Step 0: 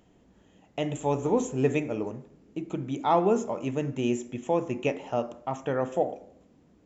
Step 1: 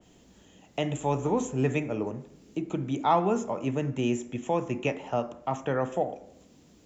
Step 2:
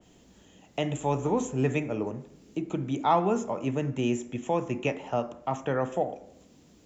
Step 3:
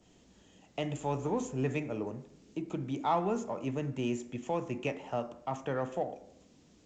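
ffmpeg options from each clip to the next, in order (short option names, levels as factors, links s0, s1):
-filter_complex "[0:a]acrossover=split=220|730|3100[s0][s1][s2][s3];[s1]alimiter=level_in=1.19:limit=0.0631:level=0:latency=1:release=470,volume=0.841[s4];[s3]acompressor=mode=upward:threshold=0.00141:ratio=2.5[s5];[s0][s4][s2][s5]amix=inputs=4:normalize=0,adynamicequalizer=threshold=0.00447:dfrequency=2200:dqfactor=0.7:tfrequency=2200:tqfactor=0.7:attack=5:release=100:ratio=0.375:range=2:mode=cutabove:tftype=highshelf,volume=1.33"
-af anull
-filter_complex "[0:a]asplit=2[s0][s1];[s1]asoftclip=type=tanh:threshold=0.0422,volume=0.299[s2];[s0][s2]amix=inputs=2:normalize=0,volume=0.447" -ar 16000 -c:a g722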